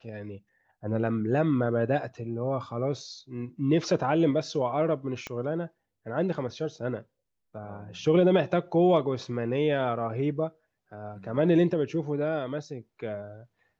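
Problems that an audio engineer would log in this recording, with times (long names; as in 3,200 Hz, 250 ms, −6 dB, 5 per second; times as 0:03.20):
0:05.27: click −20 dBFS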